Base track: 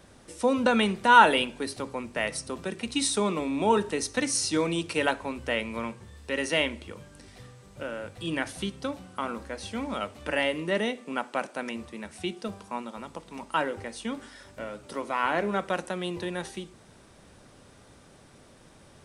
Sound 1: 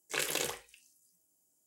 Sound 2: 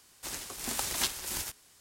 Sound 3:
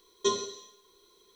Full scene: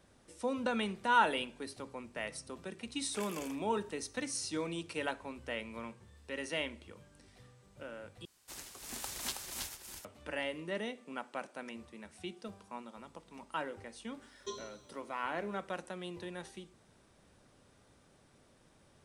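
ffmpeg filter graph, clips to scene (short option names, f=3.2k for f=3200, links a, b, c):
-filter_complex "[0:a]volume=-11dB[a];[1:a]asuperstop=centerf=3800:order=4:qfactor=4.1[b];[2:a]aecho=1:1:322:0.596[c];[a]asplit=2[d][e];[d]atrim=end=8.254[f];[c]atrim=end=1.8,asetpts=PTS-STARTPTS,volume=-9dB[g];[e]atrim=start=10.046[h];[b]atrim=end=1.66,asetpts=PTS-STARTPTS,volume=-13.5dB,afade=t=in:d=0.004:c=hsin,afade=t=out:st=1.656:d=0.004:c=hsin,adelay=3010[i];[3:a]atrim=end=1.35,asetpts=PTS-STARTPTS,volume=-15.5dB,afade=t=in:d=0.004:c=hsin,afade=t=out:st=1.346:d=0.004:c=hsin,adelay=14220[j];[f][g]acrossfade=d=0.004:c1=hsin:c2=hsin[k];[k][h]acrossfade=d=0.004:c1=hsin:c2=hsin[l];[l][i][j]amix=inputs=3:normalize=0"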